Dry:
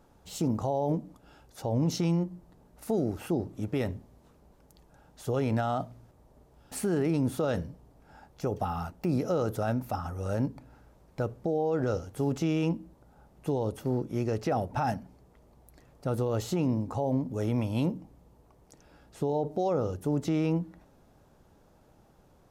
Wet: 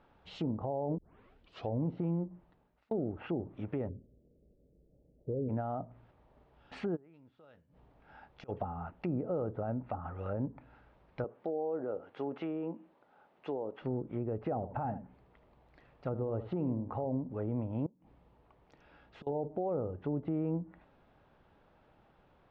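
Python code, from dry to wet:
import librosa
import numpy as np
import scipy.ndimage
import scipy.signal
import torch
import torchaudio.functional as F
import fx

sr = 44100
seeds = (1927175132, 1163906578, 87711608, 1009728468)

y = fx.steep_lowpass(x, sr, hz=550.0, slope=48, at=(3.88, 5.48), fade=0.02)
y = fx.gate_flip(y, sr, shuts_db=-30.0, range_db=-27, at=(6.95, 8.48), fade=0.02)
y = fx.highpass(y, sr, hz=300.0, slope=12, at=(11.24, 13.82))
y = fx.echo_single(y, sr, ms=77, db=-12.5, at=(14.55, 17.06))
y = fx.gate_flip(y, sr, shuts_db=-31.0, range_db=-25, at=(17.86, 19.27))
y = fx.edit(y, sr, fx.tape_start(start_s=0.98, length_s=0.73),
    fx.fade_out_span(start_s=2.28, length_s=0.63), tone=tone)
y = scipy.signal.sosfilt(scipy.signal.butter(4, 3200.0, 'lowpass', fs=sr, output='sos'), y)
y = fx.tilt_shelf(y, sr, db=-5.0, hz=830.0)
y = fx.env_lowpass_down(y, sr, base_hz=630.0, full_db=-29.5)
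y = F.gain(torch.from_numpy(y), -2.0).numpy()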